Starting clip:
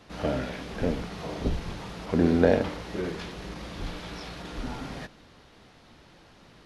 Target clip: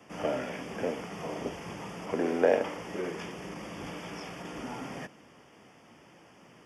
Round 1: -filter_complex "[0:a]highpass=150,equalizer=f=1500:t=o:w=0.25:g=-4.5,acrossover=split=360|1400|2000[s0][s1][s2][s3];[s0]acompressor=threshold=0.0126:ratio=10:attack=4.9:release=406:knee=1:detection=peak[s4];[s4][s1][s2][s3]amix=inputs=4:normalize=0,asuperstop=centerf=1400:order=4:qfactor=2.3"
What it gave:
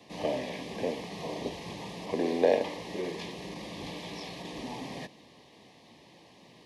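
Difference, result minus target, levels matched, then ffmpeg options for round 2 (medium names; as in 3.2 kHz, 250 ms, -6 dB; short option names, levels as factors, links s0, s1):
4 kHz band +4.5 dB
-filter_complex "[0:a]highpass=150,equalizer=f=1500:t=o:w=0.25:g=-4.5,acrossover=split=360|1400|2000[s0][s1][s2][s3];[s0]acompressor=threshold=0.0126:ratio=10:attack=4.9:release=406:knee=1:detection=peak[s4];[s4][s1][s2][s3]amix=inputs=4:normalize=0,asuperstop=centerf=4000:order=4:qfactor=2.3"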